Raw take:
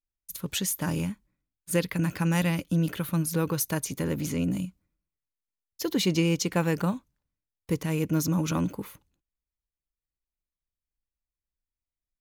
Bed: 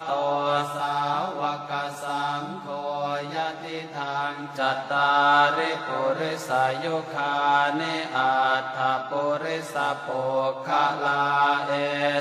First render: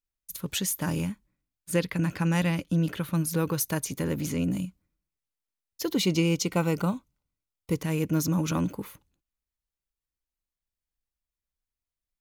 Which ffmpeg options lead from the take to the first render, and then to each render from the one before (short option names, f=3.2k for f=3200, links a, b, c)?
-filter_complex "[0:a]asettb=1/sr,asplit=3[a][b][c];[a]atrim=end=1.714[d];[b]atrim=start=1.71:end=3.15,asetpts=PTS-STARTPTS,afade=t=in:d=0.004:c=qsin,afade=t=out:st=1.436:d=0.004:c=qsin,highshelf=f=11k:g=-11[e];[c]atrim=start=3.146[f];[d][e]acrossfade=d=0.004:c1=hsin:c2=qsin[g];[g][f]acrossfade=d=0.004:c1=qsin:c2=hsin,asettb=1/sr,asplit=3[h][i][j];[h]atrim=end=5.944[k];[i]atrim=start=5.94:end=7.75,asetpts=PTS-STARTPTS,afade=t=in:d=0.004:c=qsin,afade=t=out:st=1.806:d=0.004:c=qsin,asuperstop=centerf=1700:order=8:qfactor=5.7[l];[j]atrim=start=7.746[m];[k][l]acrossfade=d=0.004:c1=hsin:c2=qsin[n];[n][m]acrossfade=d=0.004:c1=qsin:c2=hsin"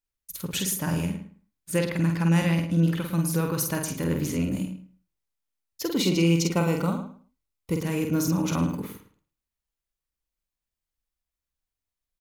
-filter_complex "[0:a]asplit=2[a][b];[b]adelay=48,volume=-4.5dB[c];[a][c]amix=inputs=2:normalize=0,asplit=2[d][e];[e]adelay=108,lowpass=f=2.3k:p=1,volume=-9dB,asplit=2[f][g];[g]adelay=108,lowpass=f=2.3k:p=1,volume=0.21,asplit=2[h][i];[i]adelay=108,lowpass=f=2.3k:p=1,volume=0.21[j];[d][f][h][j]amix=inputs=4:normalize=0"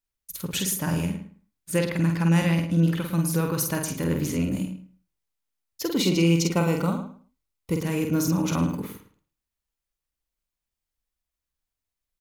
-af "volume=1dB"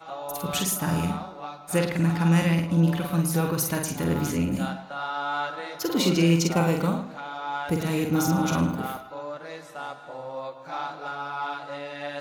-filter_complex "[1:a]volume=-10.5dB[a];[0:a][a]amix=inputs=2:normalize=0"